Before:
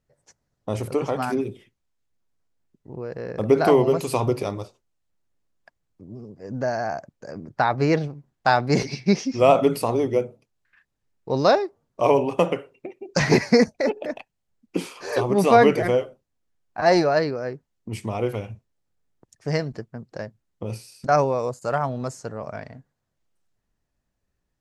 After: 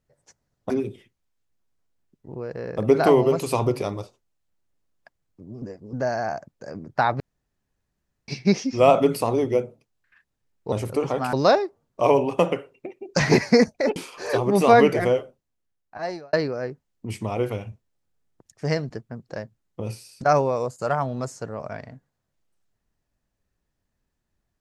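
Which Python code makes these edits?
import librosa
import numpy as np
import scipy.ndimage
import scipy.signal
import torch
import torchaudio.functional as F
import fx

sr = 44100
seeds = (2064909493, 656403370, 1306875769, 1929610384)

y = fx.edit(x, sr, fx.move(start_s=0.7, length_s=0.61, to_s=11.33),
    fx.reverse_span(start_s=6.23, length_s=0.31),
    fx.room_tone_fill(start_s=7.81, length_s=1.08),
    fx.cut(start_s=13.96, length_s=0.83),
    fx.fade_out_span(start_s=16.02, length_s=1.14), tone=tone)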